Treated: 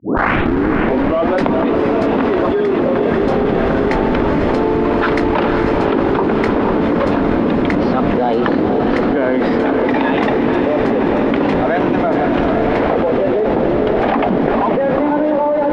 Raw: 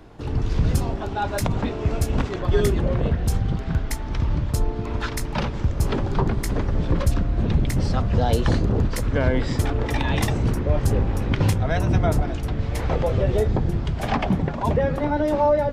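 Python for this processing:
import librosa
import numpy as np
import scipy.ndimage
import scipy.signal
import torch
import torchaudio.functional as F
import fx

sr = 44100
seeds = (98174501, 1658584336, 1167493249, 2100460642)

p1 = fx.tape_start_head(x, sr, length_s=1.48)
p2 = scipy.signal.sosfilt(scipy.signal.cheby1(3, 1.0, [260.0, 9100.0], 'bandpass', fs=sr, output='sos'), p1)
p3 = fx.high_shelf(p2, sr, hz=2100.0, db=-4.0)
p4 = fx.schmitt(p3, sr, flips_db=-32.5)
p5 = p3 + (p4 * 10.0 ** (-11.5 / 20.0))
p6 = fx.air_absorb(p5, sr, metres=350.0)
p7 = fx.echo_diffused(p6, sr, ms=484, feedback_pct=70, wet_db=-7.0)
p8 = fx.env_flatten(p7, sr, amount_pct=100)
y = p8 * 10.0 ** (3.0 / 20.0)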